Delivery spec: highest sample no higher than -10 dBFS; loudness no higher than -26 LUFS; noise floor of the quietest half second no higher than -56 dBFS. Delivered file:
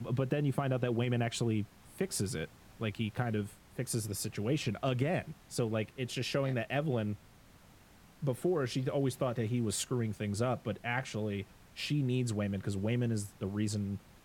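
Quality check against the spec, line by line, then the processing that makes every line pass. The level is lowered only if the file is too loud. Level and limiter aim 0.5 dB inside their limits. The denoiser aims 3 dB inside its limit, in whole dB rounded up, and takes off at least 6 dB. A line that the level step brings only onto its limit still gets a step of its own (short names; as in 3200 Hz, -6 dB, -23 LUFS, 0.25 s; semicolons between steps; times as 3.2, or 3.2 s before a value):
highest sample -17.0 dBFS: OK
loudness -34.5 LUFS: OK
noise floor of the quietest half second -59 dBFS: OK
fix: none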